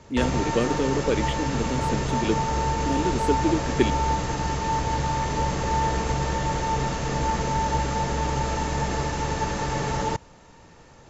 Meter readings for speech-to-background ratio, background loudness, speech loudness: -1.5 dB, -26.0 LUFS, -27.5 LUFS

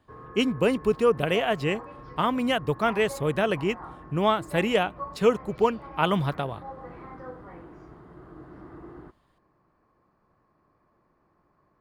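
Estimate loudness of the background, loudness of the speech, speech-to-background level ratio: -43.0 LUFS, -25.5 LUFS, 17.5 dB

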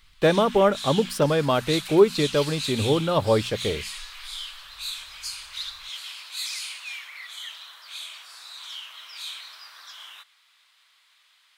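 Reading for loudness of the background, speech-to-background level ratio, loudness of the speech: -34.0 LUFS, 11.5 dB, -22.5 LUFS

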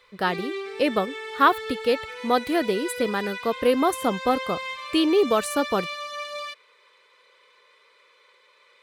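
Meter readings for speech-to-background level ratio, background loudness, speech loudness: 9.0 dB, -33.5 LUFS, -24.5 LUFS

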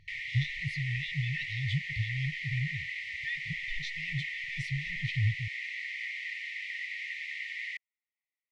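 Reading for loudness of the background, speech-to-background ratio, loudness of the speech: -36.5 LUFS, 0.5 dB, -36.0 LUFS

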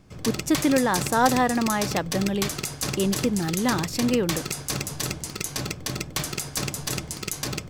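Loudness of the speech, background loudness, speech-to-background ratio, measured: -24.5 LUFS, -29.5 LUFS, 5.0 dB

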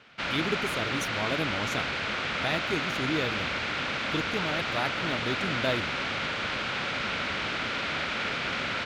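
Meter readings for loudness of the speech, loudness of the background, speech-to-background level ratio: -33.5 LUFS, -29.5 LUFS, -4.0 dB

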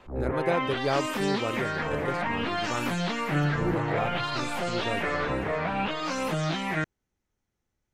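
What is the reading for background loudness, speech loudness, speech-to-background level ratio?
-29.0 LUFS, -34.0 LUFS, -5.0 dB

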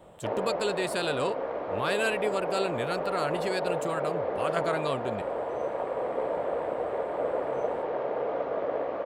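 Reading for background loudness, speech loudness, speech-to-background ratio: -31.5 LUFS, -32.0 LUFS, -0.5 dB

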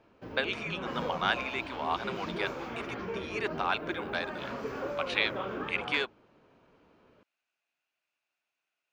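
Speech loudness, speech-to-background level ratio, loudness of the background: -33.5 LUFS, 4.5 dB, -38.0 LUFS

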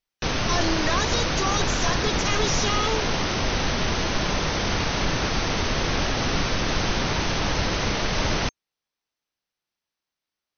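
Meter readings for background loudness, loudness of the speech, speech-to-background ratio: -24.5 LUFS, -27.5 LUFS, -3.0 dB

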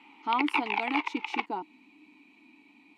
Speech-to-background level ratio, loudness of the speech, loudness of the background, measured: -1.5 dB, -33.5 LUFS, -32.0 LUFS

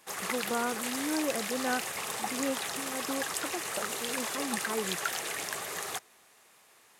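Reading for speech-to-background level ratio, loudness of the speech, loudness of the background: -3.0 dB, -36.5 LUFS, -33.5 LUFS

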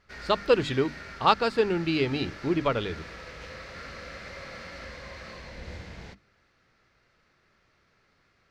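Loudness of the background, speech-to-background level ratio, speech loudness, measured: -42.0 LUFS, 16.0 dB, -26.0 LUFS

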